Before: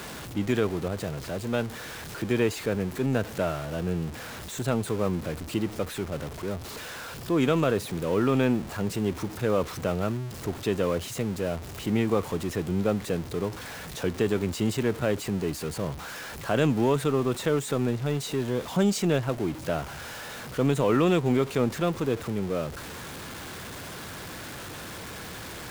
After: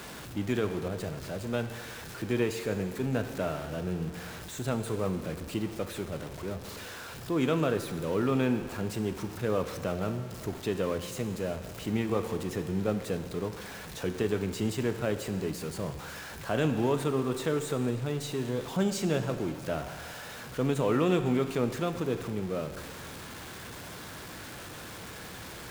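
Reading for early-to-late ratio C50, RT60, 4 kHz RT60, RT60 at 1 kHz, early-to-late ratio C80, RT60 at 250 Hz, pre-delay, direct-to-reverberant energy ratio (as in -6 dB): 9.5 dB, 1.8 s, 1.8 s, 1.8 s, 10.5 dB, 1.8 s, 11 ms, 8.0 dB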